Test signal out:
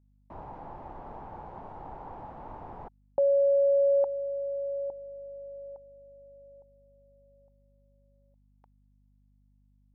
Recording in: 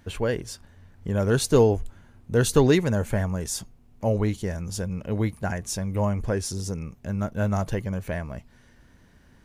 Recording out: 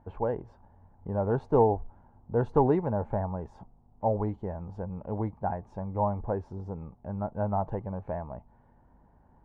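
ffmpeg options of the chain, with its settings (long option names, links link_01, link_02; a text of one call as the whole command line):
ffmpeg -i in.wav -af "lowpass=frequency=860:width_type=q:width=4.9,aeval=exprs='val(0)+0.00158*(sin(2*PI*50*n/s)+sin(2*PI*2*50*n/s)/2+sin(2*PI*3*50*n/s)/3+sin(2*PI*4*50*n/s)/4+sin(2*PI*5*50*n/s)/5)':channel_layout=same,aeval=exprs='0.794*(cos(1*acos(clip(val(0)/0.794,-1,1)))-cos(1*PI/2))+0.01*(cos(3*acos(clip(val(0)/0.794,-1,1)))-cos(3*PI/2))':channel_layout=same,volume=-7dB" out.wav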